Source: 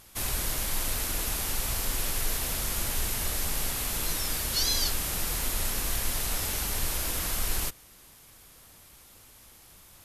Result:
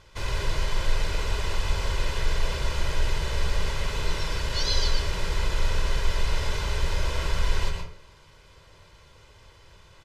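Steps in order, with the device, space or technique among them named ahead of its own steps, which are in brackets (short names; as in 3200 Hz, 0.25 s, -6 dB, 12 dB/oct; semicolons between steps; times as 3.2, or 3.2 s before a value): microphone above a desk (comb 2 ms, depth 64%; reverb RT60 0.50 s, pre-delay 0.11 s, DRR 3.5 dB); air absorption 150 m; gain +2 dB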